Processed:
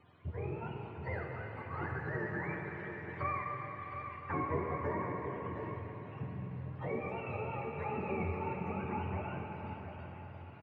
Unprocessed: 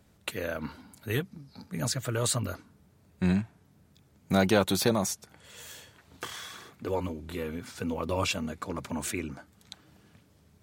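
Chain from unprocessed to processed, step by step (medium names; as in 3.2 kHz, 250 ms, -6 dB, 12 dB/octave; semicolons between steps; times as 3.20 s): spectrum inverted on a logarithmic axis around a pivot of 460 Hz; tape spacing loss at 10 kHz 27 dB; compression 2.5:1, threshold -48 dBFS, peak gain reduction 18.5 dB; treble shelf 2.1 kHz +9.5 dB; on a send: delay 719 ms -9 dB; on the sum: plate-style reverb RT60 4.7 s, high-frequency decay 1×, DRR -0.5 dB; tape noise reduction on one side only decoder only; trim +5 dB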